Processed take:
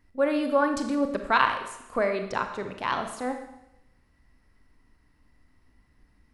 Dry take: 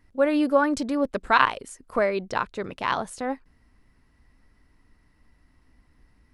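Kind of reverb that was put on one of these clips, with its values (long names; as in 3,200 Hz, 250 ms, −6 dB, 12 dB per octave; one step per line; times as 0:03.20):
four-comb reverb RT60 0.88 s, combs from 28 ms, DRR 6 dB
level −3 dB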